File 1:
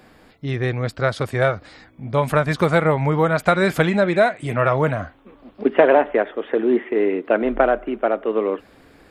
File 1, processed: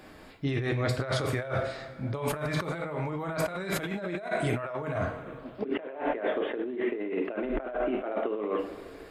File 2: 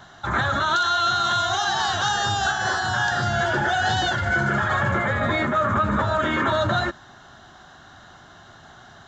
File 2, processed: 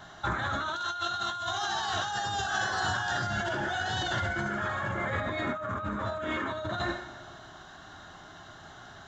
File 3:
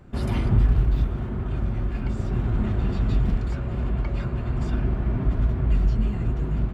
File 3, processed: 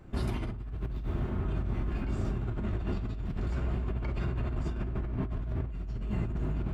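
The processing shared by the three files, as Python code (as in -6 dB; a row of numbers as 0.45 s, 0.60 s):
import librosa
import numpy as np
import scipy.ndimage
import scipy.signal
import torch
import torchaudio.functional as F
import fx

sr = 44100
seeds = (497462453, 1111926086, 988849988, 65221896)

y = fx.rev_double_slope(x, sr, seeds[0], early_s=0.48, late_s=2.1, knee_db=-18, drr_db=3.5)
y = fx.over_compress(y, sr, threshold_db=-25.0, ratio=-1.0)
y = y * librosa.db_to_amplitude(-7.0)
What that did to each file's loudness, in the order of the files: -12.0 LU, -9.5 LU, -9.0 LU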